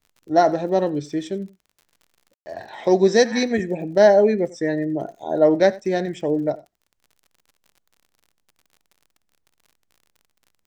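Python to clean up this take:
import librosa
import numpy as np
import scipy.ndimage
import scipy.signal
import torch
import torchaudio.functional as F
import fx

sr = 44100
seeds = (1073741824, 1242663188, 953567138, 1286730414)

y = fx.fix_declick_ar(x, sr, threshold=6.5)
y = fx.fix_ambience(y, sr, seeds[0], print_start_s=6.67, print_end_s=7.17, start_s=2.34, end_s=2.46)
y = fx.fix_echo_inverse(y, sr, delay_ms=91, level_db=-21.0)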